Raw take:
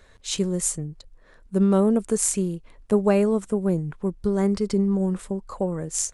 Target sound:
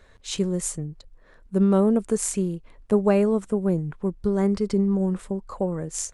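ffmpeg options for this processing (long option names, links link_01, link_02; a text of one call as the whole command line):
ffmpeg -i in.wav -af "highshelf=frequency=4200:gain=-5.5" out.wav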